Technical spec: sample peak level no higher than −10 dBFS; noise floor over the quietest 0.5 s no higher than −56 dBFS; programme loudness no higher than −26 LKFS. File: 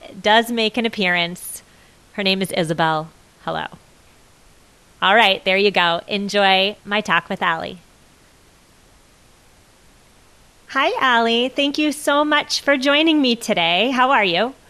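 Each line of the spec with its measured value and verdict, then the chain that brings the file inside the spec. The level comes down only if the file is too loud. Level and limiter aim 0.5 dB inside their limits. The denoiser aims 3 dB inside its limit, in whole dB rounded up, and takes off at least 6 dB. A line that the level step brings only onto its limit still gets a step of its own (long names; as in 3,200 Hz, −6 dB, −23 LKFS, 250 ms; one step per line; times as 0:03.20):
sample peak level −1.5 dBFS: out of spec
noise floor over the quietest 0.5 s −52 dBFS: out of spec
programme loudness −17.5 LKFS: out of spec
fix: level −9 dB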